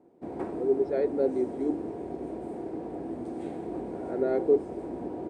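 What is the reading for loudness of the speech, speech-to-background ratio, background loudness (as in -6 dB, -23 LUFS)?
-28.5 LUFS, 8.5 dB, -37.0 LUFS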